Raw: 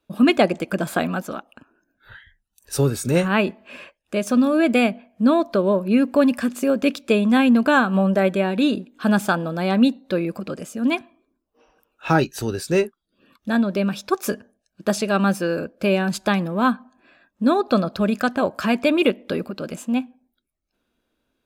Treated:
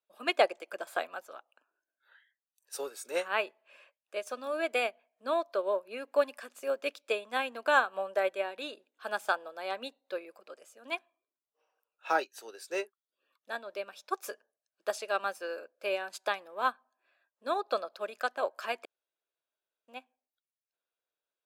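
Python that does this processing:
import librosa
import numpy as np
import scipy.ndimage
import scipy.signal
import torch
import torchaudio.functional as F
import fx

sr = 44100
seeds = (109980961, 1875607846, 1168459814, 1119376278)

y = fx.edit(x, sr, fx.room_tone_fill(start_s=18.85, length_s=1.03), tone=tone)
y = scipy.signal.sosfilt(scipy.signal.butter(4, 470.0, 'highpass', fs=sr, output='sos'), y)
y = fx.upward_expand(y, sr, threshold_db=-38.0, expansion=1.5)
y = y * librosa.db_to_amplitude(-5.5)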